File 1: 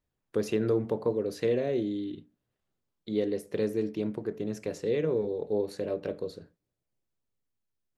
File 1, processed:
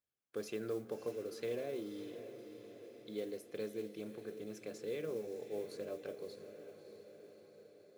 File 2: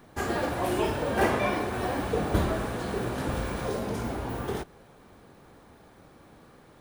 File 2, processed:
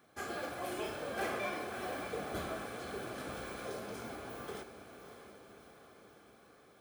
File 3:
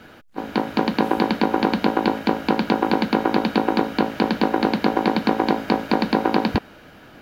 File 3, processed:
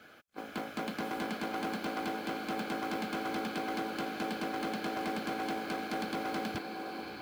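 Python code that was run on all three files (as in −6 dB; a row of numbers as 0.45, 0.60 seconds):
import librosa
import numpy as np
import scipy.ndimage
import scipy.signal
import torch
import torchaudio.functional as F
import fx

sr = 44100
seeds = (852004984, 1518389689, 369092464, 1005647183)

p1 = fx.low_shelf(x, sr, hz=460.0, db=-10.0)
p2 = p1 + fx.echo_diffused(p1, sr, ms=618, feedback_pct=61, wet_db=-10.5, dry=0)
p3 = np.clip(p2, -10.0 ** (-23.0 / 20.0), 10.0 ** (-23.0 / 20.0))
p4 = fx.notch_comb(p3, sr, f0_hz=930.0)
p5 = fx.mod_noise(p4, sr, seeds[0], snr_db=25)
y = F.gain(torch.from_numpy(p5), -7.0).numpy()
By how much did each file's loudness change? −13.0, −11.5, −15.0 LU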